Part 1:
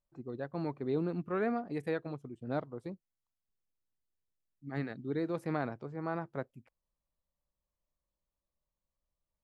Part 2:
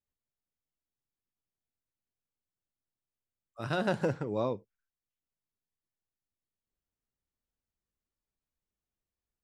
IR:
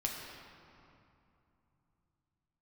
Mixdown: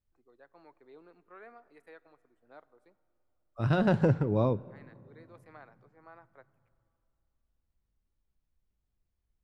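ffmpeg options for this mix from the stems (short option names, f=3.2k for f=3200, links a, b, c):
-filter_complex "[0:a]acrossover=split=340 2200:gain=0.112 1 0.158[a][b][c];[a][b][c]amix=inputs=3:normalize=0,crystalizer=i=9.5:c=0,volume=-19.5dB,asplit=2[d][e];[e]volume=-18.5dB[f];[1:a]aemphasis=mode=reproduction:type=bsi,volume=1dB,asplit=2[g][h];[h]volume=-20.5dB[i];[2:a]atrim=start_sample=2205[j];[f][i]amix=inputs=2:normalize=0[k];[k][j]afir=irnorm=-1:irlink=0[l];[d][g][l]amix=inputs=3:normalize=0"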